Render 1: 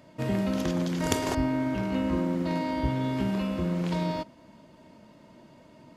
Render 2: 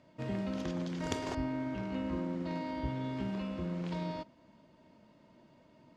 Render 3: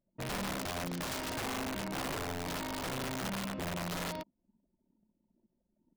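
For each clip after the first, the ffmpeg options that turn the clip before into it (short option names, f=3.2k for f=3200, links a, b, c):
-af "lowpass=6.2k,volume=-8.5dB"
-af "aeval=exprs='(mod(37.6*val(0)+1,2)-1)/37.6':c=same,anlmdn=0.00631"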